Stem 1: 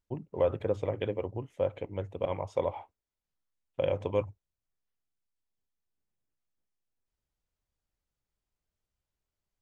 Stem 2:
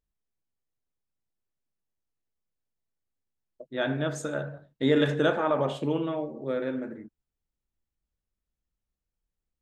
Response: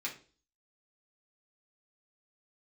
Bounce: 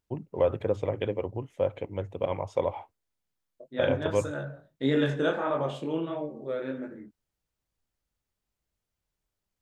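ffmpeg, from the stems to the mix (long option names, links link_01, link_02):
-filter_complex "[0:a]highpass=62,volume=2.5dB[link_01];[1:a]flanger=delay=20:depth=5.3:speed=1.6,volume=0dB[link_02];[link_01][link_02]amix=inputs=2:normalize=0"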